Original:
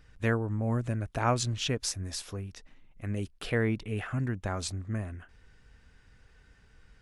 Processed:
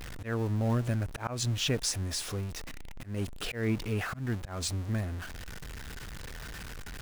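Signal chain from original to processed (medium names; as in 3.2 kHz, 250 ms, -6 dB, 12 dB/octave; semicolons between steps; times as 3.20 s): jump at every zero crossing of -36.5 dBFS; slow attack 188 ms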